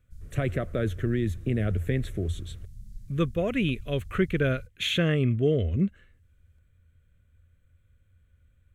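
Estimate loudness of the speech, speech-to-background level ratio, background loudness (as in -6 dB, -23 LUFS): -28.0 LUFS, 19.0 dB, -47.0 LUFS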